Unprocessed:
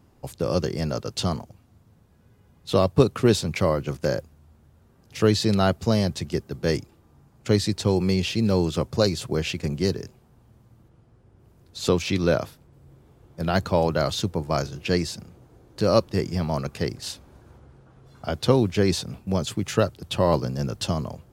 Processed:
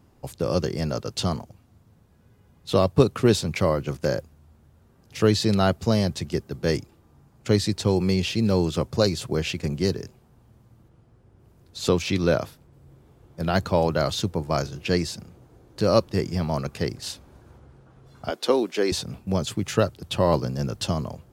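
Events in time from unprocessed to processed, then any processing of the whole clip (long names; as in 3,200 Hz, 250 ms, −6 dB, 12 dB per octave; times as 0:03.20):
0:18.30–0:18.92: high-pass filter 280 Hz 24 dB per octave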